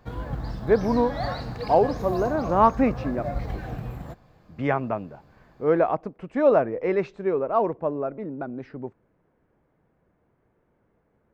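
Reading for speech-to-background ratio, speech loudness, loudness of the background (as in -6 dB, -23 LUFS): 8.5 dB, -24.5 LUFS, -33.0 LUFS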